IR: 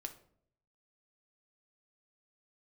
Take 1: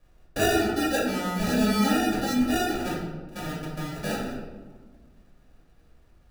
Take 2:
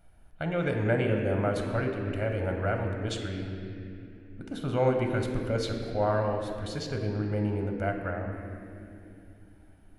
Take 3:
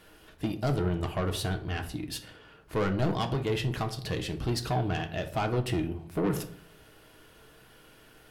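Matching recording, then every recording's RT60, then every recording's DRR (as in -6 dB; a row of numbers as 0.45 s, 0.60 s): 3; 1.4 s, 2.8 s, 0.65 s; -6.0 dB, 2.5 dB, 5.0 dB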